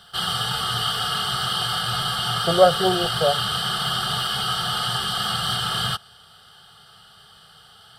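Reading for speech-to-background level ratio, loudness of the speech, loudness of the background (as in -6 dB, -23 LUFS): 1.5 dB, -21.5 LUFS, -23.0 LUFS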